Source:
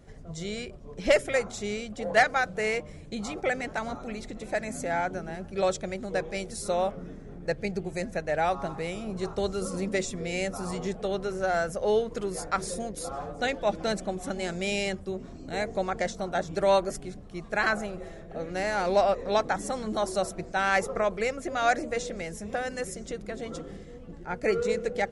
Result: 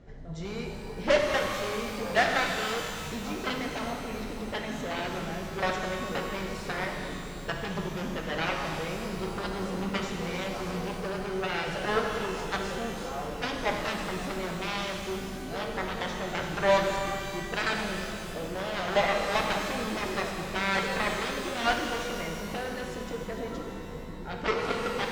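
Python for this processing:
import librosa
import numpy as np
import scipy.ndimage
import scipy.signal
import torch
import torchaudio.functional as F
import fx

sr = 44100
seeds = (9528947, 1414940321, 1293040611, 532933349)

y = fx.cheby_harmonics(x, sr, harmonics=(3, 5, 7), levels_db=(-15, -17, -9), full_scale_db=-12.0)
y = fx.air_absorb(y, sr, metres=140.0)
y = fx.rev_shimmer(y, sr, seeds[0], rt60_s=2.4, semitones=12, shimmer_db=-8, drr_db=1.5)
y = F.gain(torch.from_numpy(y), -2.0).numpy()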